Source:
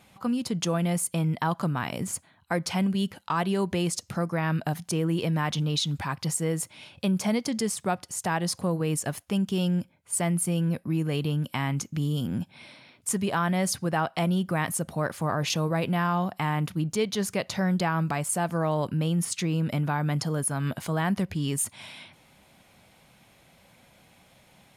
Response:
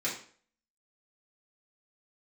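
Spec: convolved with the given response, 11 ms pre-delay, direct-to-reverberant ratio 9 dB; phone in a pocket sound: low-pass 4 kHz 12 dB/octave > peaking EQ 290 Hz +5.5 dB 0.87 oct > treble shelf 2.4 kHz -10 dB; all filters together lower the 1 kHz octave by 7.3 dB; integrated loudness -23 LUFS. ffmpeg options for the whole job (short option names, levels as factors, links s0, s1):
-filter_complex "[0:a]equalizer=f=1000:t=o:g=-8.5,asplit=2[s0][s1];[1:a]atrim=start_sample=2205,adelay=11[s2];[s1][s2]afir=irnorm=-1:irlink=0,volume=0.168[s3];[s0][s3]amix=inputs=2:normalize=0,lowpass=4000,equalizer=f=290:t=o:w=0.87:g=5.5,highshelf=f=2400:g=-10,volume=1.68"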